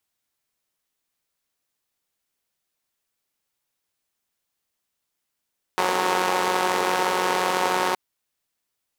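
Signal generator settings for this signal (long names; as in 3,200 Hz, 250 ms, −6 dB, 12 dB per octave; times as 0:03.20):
pulse-train model of a four-cylinder engine, steady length 2.17 s, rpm 5,500, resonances 470/850 Hz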